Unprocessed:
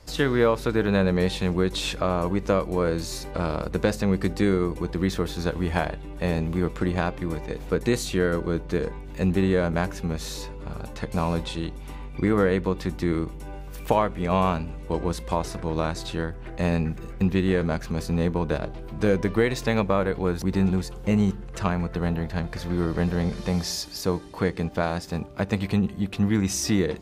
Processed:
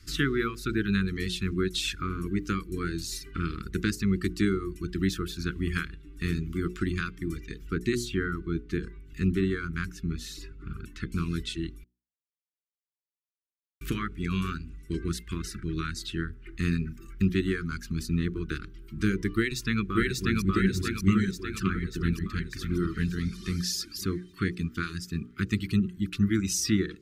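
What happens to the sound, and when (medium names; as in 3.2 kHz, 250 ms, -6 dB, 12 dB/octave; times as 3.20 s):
7.56–11.34 s: treble shelf 3.9 kHz -6.5 dB
11.84–13.81 s: mute
19.36–20.51 s: echo throw 590 ms, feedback 65%, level 0 dB
whole clip: elliptic band-stop 370–1300 Hz, stop band 40 dB; reverb removal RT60 1.3 s; hum notches 60/120/180/240/300/360/420/480 Hz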